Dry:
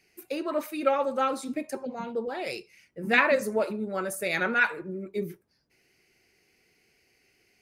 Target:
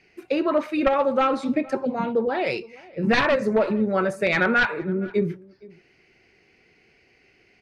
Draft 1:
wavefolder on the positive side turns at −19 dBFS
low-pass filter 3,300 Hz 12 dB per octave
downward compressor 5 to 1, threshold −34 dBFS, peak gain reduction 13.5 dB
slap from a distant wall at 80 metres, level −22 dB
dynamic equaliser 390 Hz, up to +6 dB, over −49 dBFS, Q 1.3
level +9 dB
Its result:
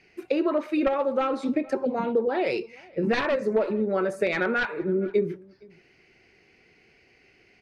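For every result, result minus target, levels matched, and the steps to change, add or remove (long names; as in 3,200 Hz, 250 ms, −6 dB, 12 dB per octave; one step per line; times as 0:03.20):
downward compressor: peak gain reduction +7 dB; 125 Hz band −2.5 dB
change: downward compressor 5 to 1, threshold −25.5 dBFS, peak gain reduction 7 dB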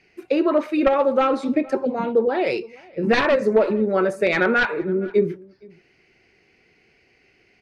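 125 Hz band −4.0 dB
change: dynamic equaliser 120 Hz, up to +6 dB, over −49 dBFS, Q 1.3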